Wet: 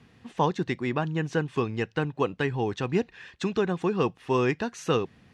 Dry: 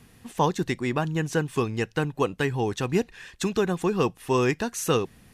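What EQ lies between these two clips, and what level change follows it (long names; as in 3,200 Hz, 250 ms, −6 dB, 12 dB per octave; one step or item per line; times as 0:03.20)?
high-pass filter 75 Hz
low-pass filter 4,200 Hz 12 dB per octave
−1.5 dB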